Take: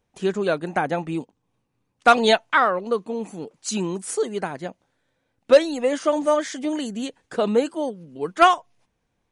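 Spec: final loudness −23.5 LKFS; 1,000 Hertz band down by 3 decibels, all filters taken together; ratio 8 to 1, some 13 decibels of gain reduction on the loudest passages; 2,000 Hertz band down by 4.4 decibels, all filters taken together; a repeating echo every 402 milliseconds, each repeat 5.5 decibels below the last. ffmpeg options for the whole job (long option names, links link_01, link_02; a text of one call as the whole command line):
ffmpeg -i in.wav -af "equalizer=frequency=1000:width_type=o:gain=-3,equalizer=frequency=2000:width_type=o:gain=-5,acompressor=threshold=-22dB:ratio=8,aecho=1:1:402|804|1206|1608|2010|2412|2814:0.531|0.281|0.149|0.079|0.0419|0.0222|0.0118,volume=5dB" out.wav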